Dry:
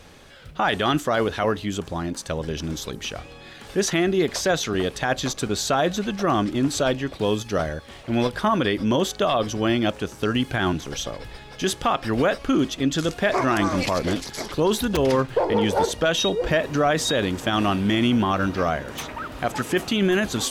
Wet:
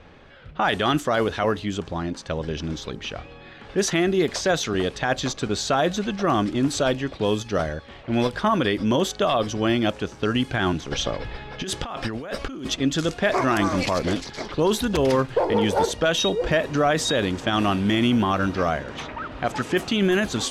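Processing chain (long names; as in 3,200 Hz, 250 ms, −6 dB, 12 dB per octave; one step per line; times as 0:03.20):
low-pass that shuts in the quiet parts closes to 2,500 Hz, open at −16.5 dBFS
0:10.91–0:12.76: compressor whose output falls as the input rises −29 dBFS, ratio −1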